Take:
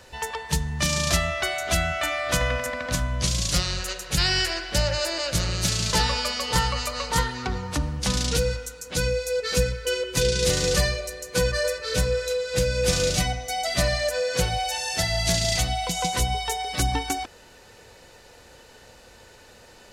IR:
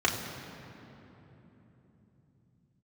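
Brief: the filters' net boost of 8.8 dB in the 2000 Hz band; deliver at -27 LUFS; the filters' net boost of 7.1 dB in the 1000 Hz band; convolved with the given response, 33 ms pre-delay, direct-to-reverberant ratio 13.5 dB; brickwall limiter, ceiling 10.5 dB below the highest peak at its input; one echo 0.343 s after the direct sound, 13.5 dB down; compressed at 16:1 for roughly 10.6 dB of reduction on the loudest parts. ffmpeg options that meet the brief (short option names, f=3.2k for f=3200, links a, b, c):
-filter_complex "[0:a]equalizer=f=1k:t=o:g=7.5,equalizer=f=2k:t=o:g=8.5,acompressor=threshold=-23dB:ratio=16,alimiter=limit=-20.5dB:level=0:latency=1,aecho=1:1:343:0.211,asplit=2[a][b];[1:a]atrim=start_sample=2205,adelay=33[c];[b][c]afir=irnorm=-1:irlink=0,volume=-26dB[d];[a][d]amix=inputs=2:normalize=0,volume=2dB"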